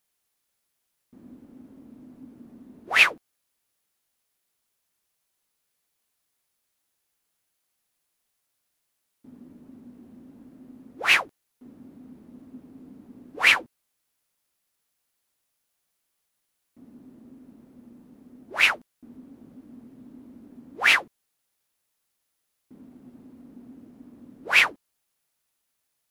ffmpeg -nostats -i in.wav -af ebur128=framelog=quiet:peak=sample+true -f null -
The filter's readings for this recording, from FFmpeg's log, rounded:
Integrated loudness:
  I:         -20.6 LUFS
  Threshold: -37.2 LUFS
Loudness range:
  LRA:         3.7 LU
  Threshold: -49.1 LUFS
  LRA low:   -29.6 LUFS
  LRA high:  -25.9 LUFS
Sample peak:
  Peak:       -4.5 dBFS
True peak:
  Peak:       -4.5 dBFS